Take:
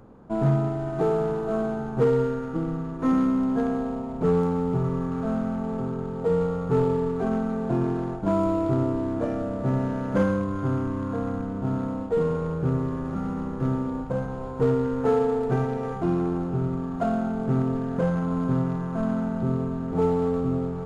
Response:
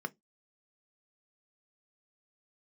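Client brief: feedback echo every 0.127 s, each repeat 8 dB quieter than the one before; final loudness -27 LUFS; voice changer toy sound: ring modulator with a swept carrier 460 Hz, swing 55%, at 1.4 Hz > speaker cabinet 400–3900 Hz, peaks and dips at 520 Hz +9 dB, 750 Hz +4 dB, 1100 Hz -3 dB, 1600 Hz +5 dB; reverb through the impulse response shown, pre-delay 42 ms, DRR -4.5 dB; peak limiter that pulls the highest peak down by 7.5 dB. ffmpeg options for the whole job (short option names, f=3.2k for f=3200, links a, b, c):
-filter_complex "[0:a]alimiter=limit=-20dB:level=0:latency=1,aecho=1:1:127|254|381|508|635:0.398|0.159|0.0637|0.0255|0.0102,asplit=2[a][b];[1:a]atrim=start_sample=2205,adelay=42[c];[b][c]afir=irnorm=-1:irlink=0,volume=2.5dB[d];[a][d]amix=inputs=2:normalize=0,aeval=exprs='val(0)*sin(2*PI*460*n/s+460*0.55/1.4*sin(2*PI*1.4*n/s))':c=same,highpass=400,equalizer=f=520:t=q:w=4:g=9,equalizer=f=750:t=q:w=4:g=4,equalizer=f=1.1k:t=q:w=4:g=-3,equalizer=f=1.6k:t=q:w=4:g=5,lowpass=f=3.9k:w=0.5412,lowpass=f=3.9k:w=1.3066,volume=-3dB"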